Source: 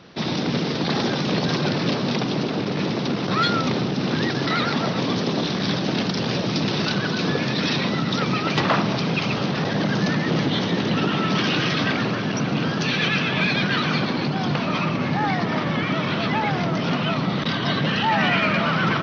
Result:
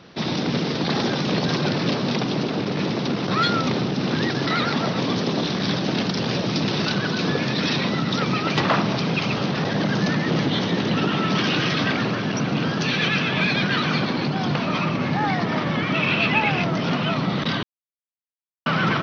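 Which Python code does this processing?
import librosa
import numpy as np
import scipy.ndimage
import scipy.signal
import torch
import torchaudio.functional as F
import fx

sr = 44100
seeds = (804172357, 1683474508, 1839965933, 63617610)

y = fx.peak_eq(x, sr, hz=2600.0, db=14.5, octaves=0.31, at=(15.94, 16.64))
y = fx.edit(y, sr, fx.silence(start_s=17.63, length_s=1.03), tone=tone)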